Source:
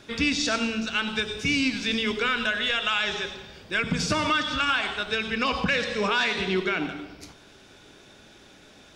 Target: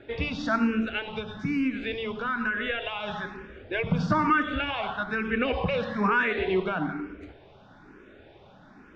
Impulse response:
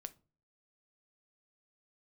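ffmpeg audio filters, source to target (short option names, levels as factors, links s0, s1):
-filter_complex "[0:a]lowpass=1600,asettb=1/sr,asplit=3[s0][s1][s2];[s0]atrim=end=0.984[s3];[s1]atrim=start=0.98:end=3.08,asetpts=PTS-STARTPTS,afade=t=in:d=0.004:c=qsin,afade=t=out:st=2.096:d=0.004:c=qsin,acompressor=threshold=0.0355:ratio=3[s4];[s2]atrim=start=3.076[s5];[s3][s4]acrossfade=d=0.004:c1=hsin:c2=qsin[s6];[s6][s5]acrossfade=d=0.004:c1=qsin:c2=hsin,asplit=2[s7][s8];[s8]afreqshift=1.1[s9];[s7][s9]amix=inputs=2:normalize=1,volume=1.78"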